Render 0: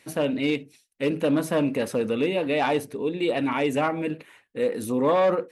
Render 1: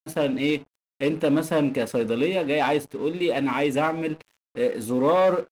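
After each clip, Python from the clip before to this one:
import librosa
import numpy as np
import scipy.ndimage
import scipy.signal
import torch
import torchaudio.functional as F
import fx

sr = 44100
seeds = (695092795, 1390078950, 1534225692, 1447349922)

y = np.sign(x) * np.maximum(np.abs(x) - 10.0 ** (-46.0 / 20.0), 0.0)
y = F.gain(torch.from_numpy(y), 1.5).numpy()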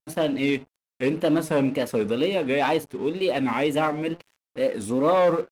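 y = fx.wow_flutter(x, sr, seeds[0], rate_hz=2.1, depth_cents=130.0)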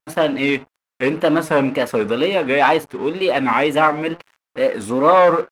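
y = fx.peak_eq(x, sr, hz=1300.0, db=10.0, octaves=2.2)
y = F.gain(torch.from_numpy(y), 2.0).numpy()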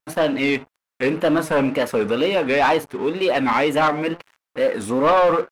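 y = 10.0 ** (-10.5 / 20.0) * np.tanh(x / 10.0 ** (-10.5 / 20.0))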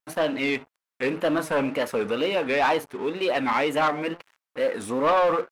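y = fx.low_shelf(x, sr, hz=270.0, db=-5.0)
y = F.gain(torch.from_numpy(y), -4.0).numpy()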